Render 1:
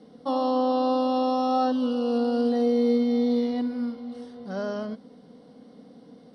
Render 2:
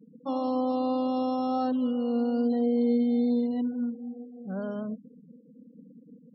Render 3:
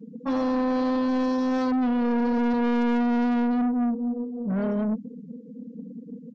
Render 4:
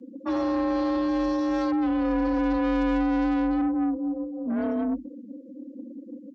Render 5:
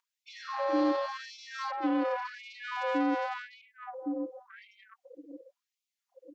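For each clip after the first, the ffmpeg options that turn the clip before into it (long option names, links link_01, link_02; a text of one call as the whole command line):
ffmpeg -i in.wav -af "afftfilt=real='re*gte(hypot(re,im),0.0158)':imag='im*gte(hypot(re,im),0.0158)':win_size=1024:overlap=0.75,equalizer=frequency=140:width=0.89:gain=11,volume=-6.5dB" out.wav
ffmpeg -i in.wav -af "aecho=1:1:4.4:0.74,aresample=16000,asoftclip=type=tanh:threshold=-29.5dB,aresample=44100,volume=8dB" out.wav
ffmpeg -i in.wav -af "afreqshift=44,volume=-1dB" out.wav
ffmpeg -i in.wav -af "afftfilt=real='re*gte(b*sr/1024,260*pow(2100/260,0.5+0.5*sin(2*PI*0.9*pts/sr)))':imag='im*gte(b*sr/1024,260*pow(2100/260,0.5+0.5*sin(2*PI*0.9*pts/sr)))':win_size=1024:overlap=0.75" out.wav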